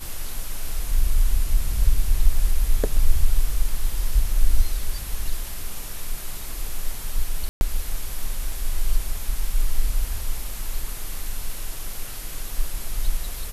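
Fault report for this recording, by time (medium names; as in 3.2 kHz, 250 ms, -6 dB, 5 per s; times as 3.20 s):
7.49–7.61 s: dropout 121 ms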